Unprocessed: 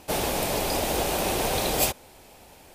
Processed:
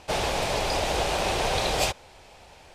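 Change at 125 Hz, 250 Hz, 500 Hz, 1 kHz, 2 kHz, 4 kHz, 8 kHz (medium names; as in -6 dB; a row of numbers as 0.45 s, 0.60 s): +0.5 dB, -4.0 dB, 0.0 dB, +1.5 dB, +2.5 dB, +1.5 dB, -4.0 dB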